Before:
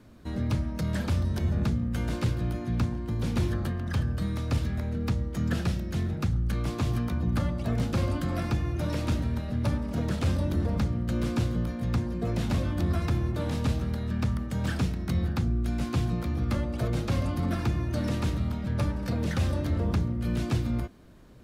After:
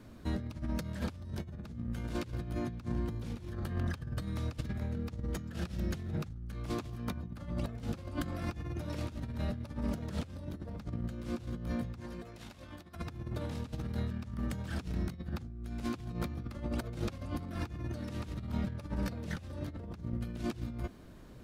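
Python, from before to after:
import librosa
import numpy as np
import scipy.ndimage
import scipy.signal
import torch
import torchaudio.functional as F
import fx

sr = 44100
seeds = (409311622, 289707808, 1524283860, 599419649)

y = fx.over_compress(x, sr, threshold_db=-32.0, ratio=-0.5)
y = fx.low_shelf(y, sr, hz=490.0, db=-12.0, at=(12.0, 12.96))
y = y * 10.0 ** (-4.5 / 20.0)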